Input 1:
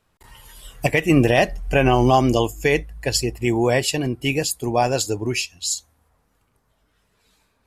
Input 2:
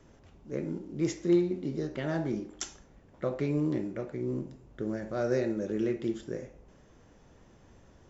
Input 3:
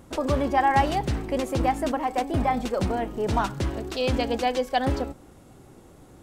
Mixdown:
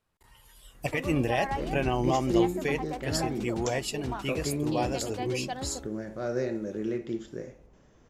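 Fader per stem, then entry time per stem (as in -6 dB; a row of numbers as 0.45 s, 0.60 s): -11.5 dB, -1.5 dB, -12.0 dB; 0.00 s, 1.05 s, 0.75 s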